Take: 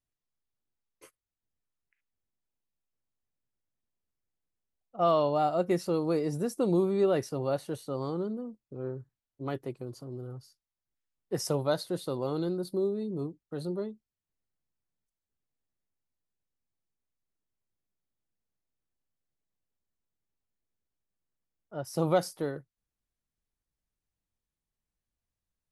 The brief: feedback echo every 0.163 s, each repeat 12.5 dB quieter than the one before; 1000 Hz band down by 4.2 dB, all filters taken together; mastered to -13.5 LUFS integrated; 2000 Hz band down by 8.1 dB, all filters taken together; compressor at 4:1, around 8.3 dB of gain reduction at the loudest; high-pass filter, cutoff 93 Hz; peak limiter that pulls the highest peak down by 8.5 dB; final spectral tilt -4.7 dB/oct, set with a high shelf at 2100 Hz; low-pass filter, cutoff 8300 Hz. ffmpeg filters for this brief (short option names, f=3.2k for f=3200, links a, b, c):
-af "highpass=93,lowpass=8.3k,equalizer=f=1k:t=o:g=-3.5,equalizer=f=2k:t=o:g=-6.5,highshelf=f=2.1k:g=-6.5,acompressor=threshold=-32dB:ratio=4,alimiter=level_in=7dB:limit=-24dB:level=0:latency=1,volume=-7dB,aecho=1:1:163|326|489:0.237|0.0569|0.0137,volume=27dB"